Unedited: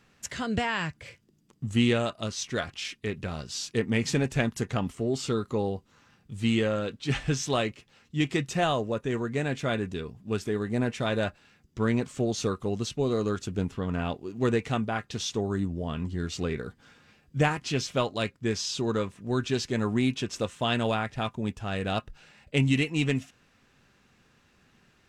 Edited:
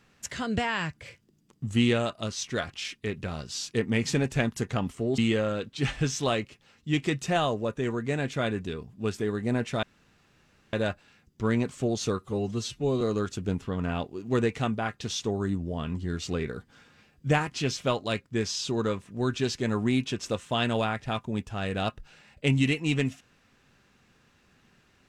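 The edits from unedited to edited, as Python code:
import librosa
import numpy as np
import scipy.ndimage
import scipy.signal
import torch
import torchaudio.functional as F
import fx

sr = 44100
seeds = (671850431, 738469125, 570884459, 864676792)

y = fx.edit(x, sr, fx.cut(start_s=5.18, length_s=1.27),
    fx.insert_room_tone(at_s=11.1, length_s=0.9),
    fx.stretch_span(start_s=12.57, length_s=0.54, factor=1.5), tone=tone)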